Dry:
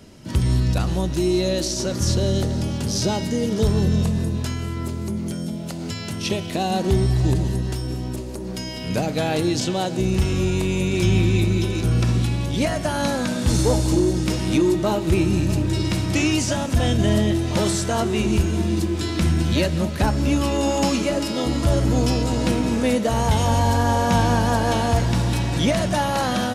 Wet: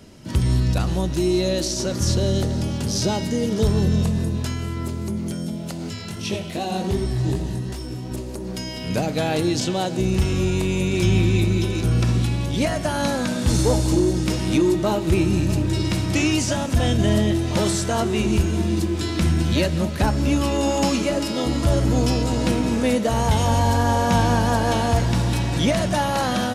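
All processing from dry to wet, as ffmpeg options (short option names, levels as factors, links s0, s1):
-filter_complex "[0:a]asettb=1/sr,asplit=3[s0][s1][s2];[s0]atrim=end=5.894[s3];[s1]atrim=start=5.89:end=8.11,asetpts=PTS-STARTPTS,afade=t=in:d=0.004:c=qsin,afade=t=out:st=2.216:d=0.004:c=qsin,flanger=delay=19:depth=4.1:speed=2.6,aecho=1:1:85:0.237,atrim=end_sample=97902[s4];[s2]atrim=start=8.106[s5];[s3][s4]acrossfade=d=0.004:c1=hsin:c2=qsin[s6];[s6][s5]acrossfade=d=0.004:c1=qsin:c2=hsin"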